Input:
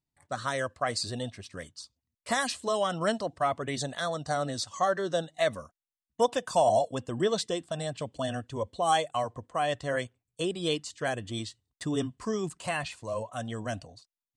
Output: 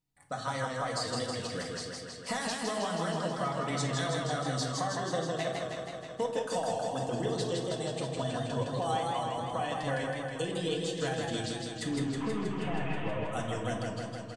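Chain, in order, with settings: 11.88–13.27 delta modulation 16 kbps, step -40 dBFS; comb 6.3 ms, depth 42%; compressor 5:1, threshold -34 dBFS, peak gain reduction 15.5 dB; reverb RT60 0.65 s, pre-delay 4 ms, DRR 2.5 dB; warbling echo 0.16 s, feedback 73%, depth 98 cents, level -3.5 dB

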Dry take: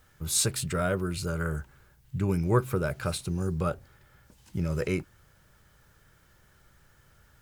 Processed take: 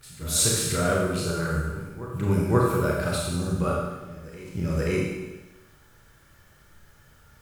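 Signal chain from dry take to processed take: reverse echo 0.531 s -16.5 dB; Schroeder reverb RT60 1.1 s, combs from 27 ms, DRR -3.5 dB

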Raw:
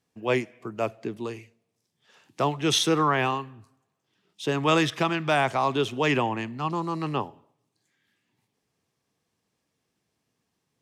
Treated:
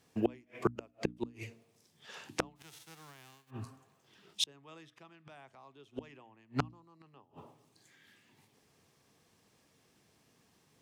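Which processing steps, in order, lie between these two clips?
2.55–3.49 spectral whitening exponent 0.3; flipped gate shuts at -24 dBFS, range -41 dB; notches 60/120/180/240/300 Hz; gain +9 dB

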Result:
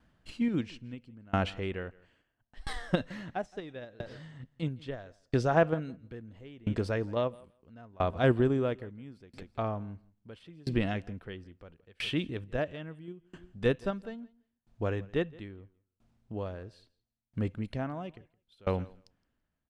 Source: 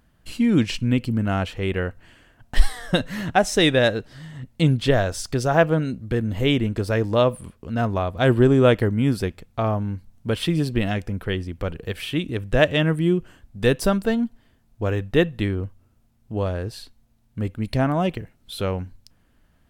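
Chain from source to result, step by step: de-esser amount 70%; low shelf 91 Hz -6 dB; in parallel at -1.5 dB: level quantiser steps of 18 dB; on the sum: air absorption 73 m; on a send: feedback echo 0.167 s, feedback 19%, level -20 dB; on the sum: dB-ramp tremolo decaying 0.75 Hz, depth 29 dB; gain -3.5 dB

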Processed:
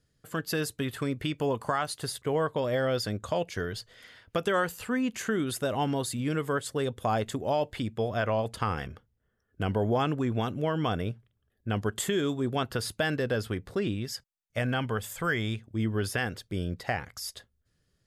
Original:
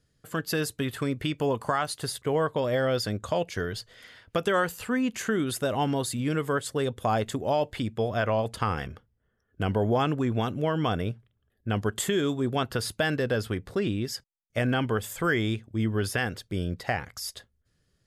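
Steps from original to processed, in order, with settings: 13.94–15.62 bell 330 Hz -6 dB 0.75 oct; gain -2 dB

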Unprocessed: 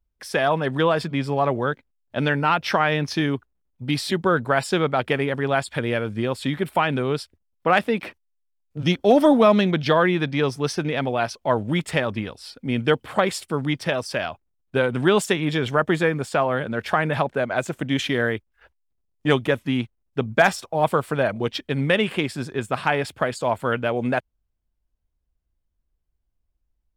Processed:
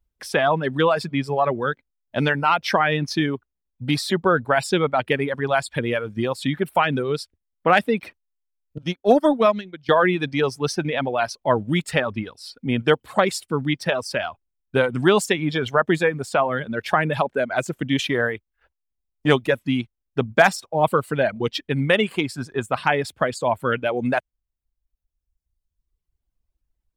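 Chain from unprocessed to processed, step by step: reverb removal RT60 1.5 s; 8.78–9.89 upward expander 2.5:1, over -26 dBFS; gain +2 dB

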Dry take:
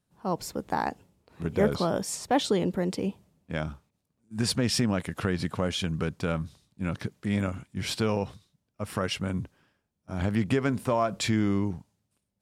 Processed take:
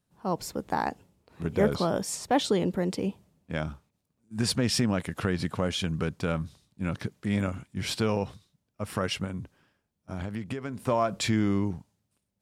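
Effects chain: 9.24–10.87 compressor 6:1, threshold -31 dBFS, peak gain reduction 11 dB

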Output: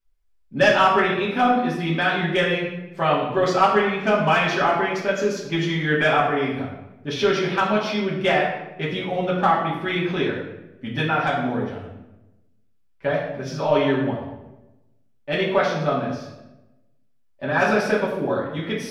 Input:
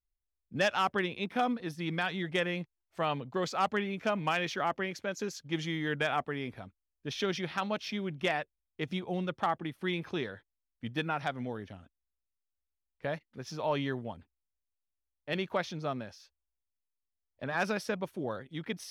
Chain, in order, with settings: high shelf 5600 Hz -8.5 dB; reverb RT60 0.95 s, pre-delay 3 ms, DRR -7 dB; gain +5 dB

